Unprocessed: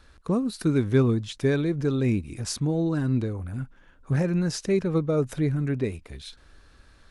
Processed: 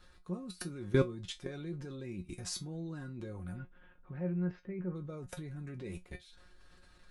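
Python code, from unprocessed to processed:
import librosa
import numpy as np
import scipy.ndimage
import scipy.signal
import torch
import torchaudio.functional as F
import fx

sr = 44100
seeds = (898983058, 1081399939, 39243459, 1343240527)

y = fx.lowpass(x, sr, hz=fx.line((3.53, 4200.0), (4.94, 1800.0)), slope=24, at=(3.53, 4.94), fade=0.02)
y = fx.level_steps(y, sr, step_db=19)
y = fx.comb_fb(y, sr, f0_hz=180.0, decay_s=0.16, harmonics='all', damping=0.0, mix_pct=90)
y = y * librosa.db_to_amplitude(7.0)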